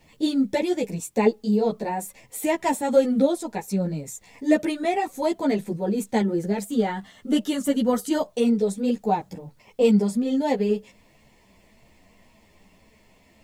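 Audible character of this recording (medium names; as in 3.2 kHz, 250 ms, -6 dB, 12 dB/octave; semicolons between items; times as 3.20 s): a quantiser's noise floor 12-bit, dither triangular; a shimmering, thickened sound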